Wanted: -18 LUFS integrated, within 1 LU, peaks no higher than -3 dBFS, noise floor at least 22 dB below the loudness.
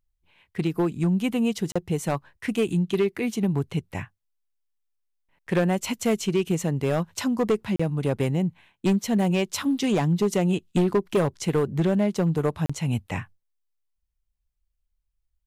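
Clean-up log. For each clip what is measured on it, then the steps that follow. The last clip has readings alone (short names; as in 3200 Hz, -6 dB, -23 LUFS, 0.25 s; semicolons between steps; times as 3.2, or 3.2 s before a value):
clipped 1.2%; flat tops at -16.0 dBFS; dropouts 3; longest dropout 35 ms; loudness -25.0 LUFS; peak -16.0 dBFS; loudness target -18.0 LUFS
-> clip repair -16 dBFS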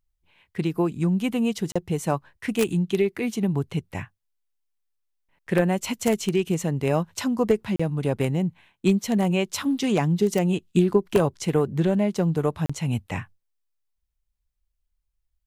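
clipped 0.0%; dropouts 3; longest dropout 35 ms
-> interpolate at 1.72/7.76/12.66, 35 ms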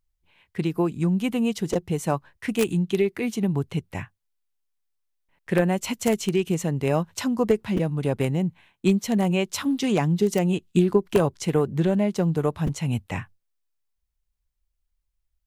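dropouts 0; loudness -24.5 LUFS; peak -7.0 dBFS; loudness target -18.0 LUFS
-> gain +6.5 dB; limiter -3 dBFS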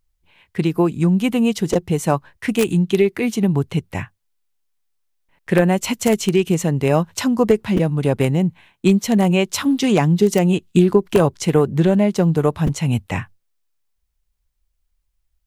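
loudness -18.0 LUFS; peak -3.0 dBFS; noise floor -71 dBFS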